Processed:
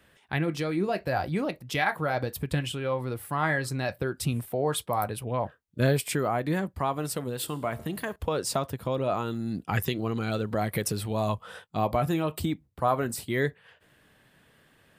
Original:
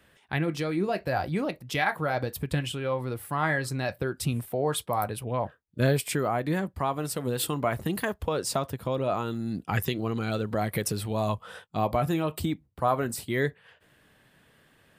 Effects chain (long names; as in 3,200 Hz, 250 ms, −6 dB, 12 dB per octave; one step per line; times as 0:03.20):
0:07.24–0:08.16: tuned comb filter 76 Hz, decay 0.93 s, harmonics all, mix 40%